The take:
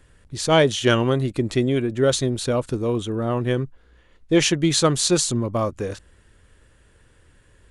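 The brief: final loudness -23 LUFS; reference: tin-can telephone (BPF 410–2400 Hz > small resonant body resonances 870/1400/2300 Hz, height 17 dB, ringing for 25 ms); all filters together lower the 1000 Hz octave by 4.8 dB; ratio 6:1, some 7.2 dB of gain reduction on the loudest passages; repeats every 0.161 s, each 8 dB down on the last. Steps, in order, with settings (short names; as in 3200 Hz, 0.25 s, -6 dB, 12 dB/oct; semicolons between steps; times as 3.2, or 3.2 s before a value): bell 1000 Hz -6 dB; compressor 6:1, threshold -21 dBFS; BPF 410–2400 Hz; feedback echo 0.161 s, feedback 40%, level -8 dB; small resonant body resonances 870/1400/2300 Hz, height 17 dB, ringing for 25 ms; gain +4 dB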